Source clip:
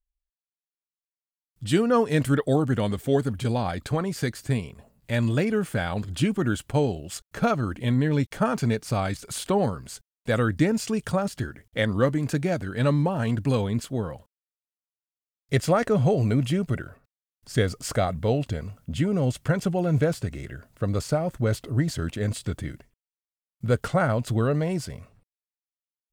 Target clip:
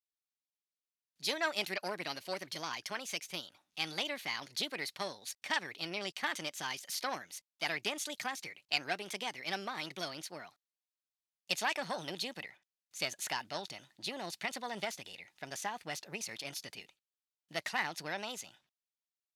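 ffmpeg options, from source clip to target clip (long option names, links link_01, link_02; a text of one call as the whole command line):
ffmpeg -i in.wav -af "aeval=exprs='0.376*(cos(1*acos(clip(val(0)/0.376,-1,1)))-cos(1*PI/2))+0.0376*(cos(4*acos(clip(val(0)/0.376,-1,1)))-cos(4*PI/2))':channel_layout=same,asetrate=59535,aresample=44100,bandpass=frequency=4200:width_type=q:width=0.95:csg=0" out.wav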